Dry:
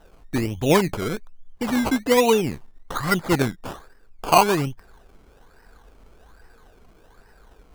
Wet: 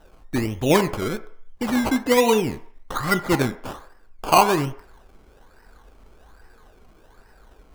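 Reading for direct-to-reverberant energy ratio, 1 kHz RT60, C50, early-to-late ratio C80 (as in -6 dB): 9.0 dB, 0.60 s, 15.0 dB, 17.5 dB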